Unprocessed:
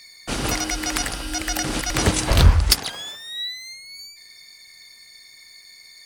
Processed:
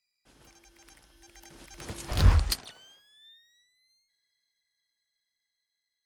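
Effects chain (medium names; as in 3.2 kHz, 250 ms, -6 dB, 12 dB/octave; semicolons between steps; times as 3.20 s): Doppler pass-by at 2.33 s, 29 m/s, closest 1.7 m; trim -3 dB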